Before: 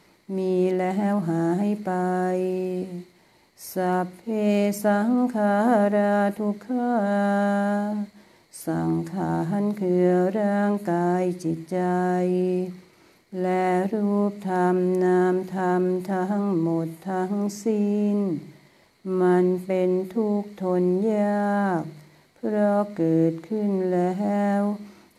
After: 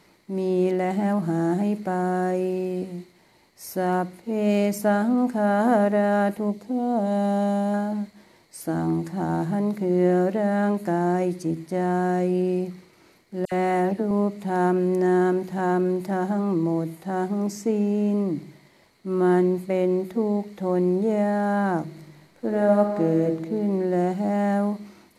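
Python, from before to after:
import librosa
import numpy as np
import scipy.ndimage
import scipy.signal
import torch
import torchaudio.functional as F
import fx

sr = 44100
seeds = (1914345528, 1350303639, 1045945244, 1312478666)

y = fx.peak_eq(x, sr, hz=1500.0, db=-14.0, octaves=0.62, at=(6.5, 7.74))
y = fx.dispersion(y, sr, late='lows', ms=69.0, hz=2400.0, at=(13.45, 14.11))
y = fx.reverb_throw(y, sr, start_s=21.85, length_s=1.36, rt60_s=1.3, drr_db=4.5)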